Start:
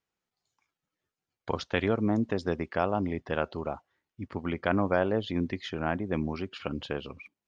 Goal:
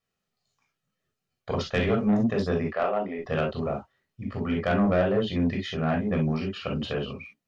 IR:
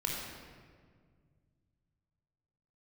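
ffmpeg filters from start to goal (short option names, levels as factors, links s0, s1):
-filter_complex "[0:a]asettb=1/sr,asplit=3[s0][s1][s2];[s0]atrim=end=2.724[s3];[s1]atrim=start=2.72:end=3.19,asetpts=PTS-STARTPTS,afade=t=in:d=0.004:c=qsin,afade=t=out:st=0.466:d=0.004:c=qsin,highpass=420,lowpass=2800[s4];[s2]atrim=start=3.186[s5];[s3][s4]acrossfade=d=0.004:c1=hsin:c2=qsin[s6];[s6][s5]acrossfade=d=0.004:c1=qsin:c2=hsin[s7];[1:a]atrim=start_sample=2205,atrim=end_sample=3969,asetrate=57330,aresample=44100[s8];[s7][s8]afir=irnorm=-1:irlink=0,asoftclip=type=tanh:threshold=0.106,volume=1.5"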